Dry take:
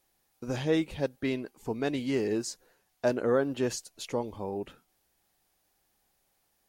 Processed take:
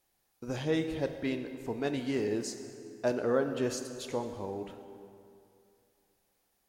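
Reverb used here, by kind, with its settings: plate-style reverb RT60 2.6 s, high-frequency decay 0.65×, DRR 7 dB; trim -3 dB

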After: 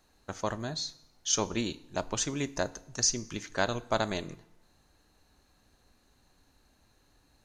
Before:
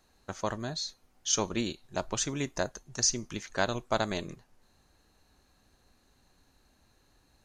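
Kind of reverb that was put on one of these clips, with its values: FDN reverb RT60 0.88 s, low-frequency decay 1×, high-frequency decay 0.9×, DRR 16.5 dB

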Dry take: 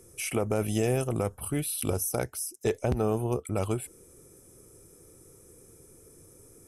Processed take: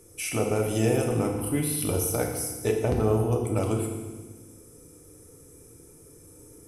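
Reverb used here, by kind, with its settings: FDN reverb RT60 1.3 s, low-frequency decay 1.45×, high-frequency decay 0.95×, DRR 0.5 dB

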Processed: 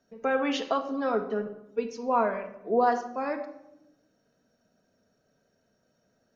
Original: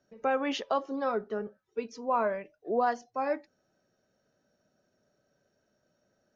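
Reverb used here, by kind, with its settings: simulated room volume 3000 m³, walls furnished, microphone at 1.7 m; trim +1.5 dB

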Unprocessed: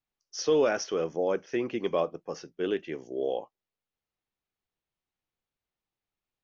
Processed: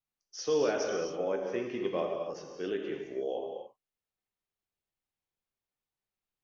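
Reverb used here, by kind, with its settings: gated-style reverb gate 300 ms flat, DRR 1.5 dB; trim -6 dB

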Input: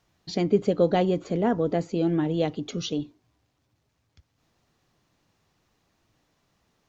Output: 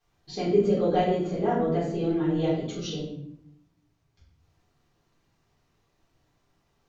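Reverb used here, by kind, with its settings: simulated room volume 150 m³, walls mixed, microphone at 3.7 m; trim -13.5 dB

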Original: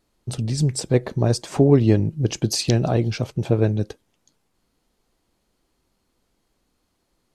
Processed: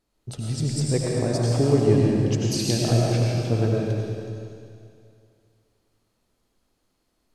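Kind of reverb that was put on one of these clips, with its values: algorithmic reverb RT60 2.4 s, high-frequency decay 1×, pre-delay 55 ms, DRR -3.5 dB; trim -6.5 dB

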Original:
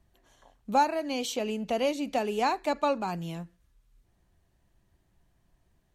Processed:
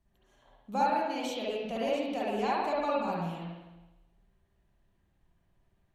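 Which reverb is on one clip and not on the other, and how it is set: spring tank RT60 1.1 s, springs 53/58 ms, chirp 20 ms, DRR -6.5 dB; trim -9.5 dB

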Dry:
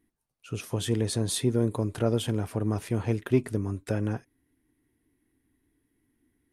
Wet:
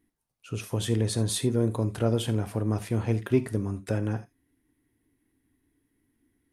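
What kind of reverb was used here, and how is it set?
gated-style reverb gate 100 ms flat, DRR 12 dB

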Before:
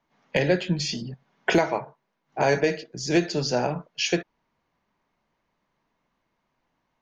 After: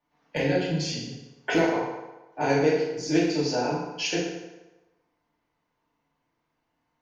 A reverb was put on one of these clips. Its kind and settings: FDN reverb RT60 1.1 s, low-frequency decay 0.8×, high-frequency decay 0.75×, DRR -6.5 dB; trim -9 dB

